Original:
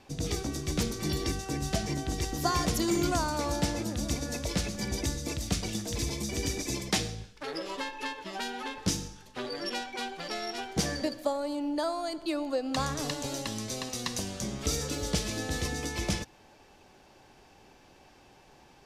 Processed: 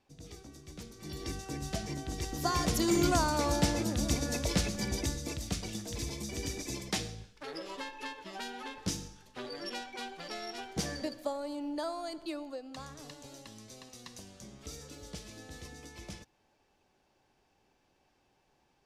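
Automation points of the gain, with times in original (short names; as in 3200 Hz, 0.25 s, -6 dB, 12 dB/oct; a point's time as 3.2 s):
0.9 s -17 dB
1.34 s -6 dB
2.07 s -6 dB
3.05 s +1 dB
4.55 s +1 dB
5.58 s -5.5 dB
12.22 s -5.5 dB
12.76 s -15 dB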